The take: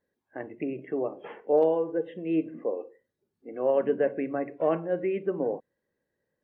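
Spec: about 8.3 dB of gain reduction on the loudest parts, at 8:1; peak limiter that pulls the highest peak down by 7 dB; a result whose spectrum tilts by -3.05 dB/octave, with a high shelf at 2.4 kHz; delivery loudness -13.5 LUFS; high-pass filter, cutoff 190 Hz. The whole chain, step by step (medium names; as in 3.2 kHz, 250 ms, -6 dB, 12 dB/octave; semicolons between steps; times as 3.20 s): high-pass 190 Hz; treble shelf 2.4 kHz +4.5 dB; compression 8:1, threshold -27 dBFS; trim +23.5 dB; peak limiter -3 dBFS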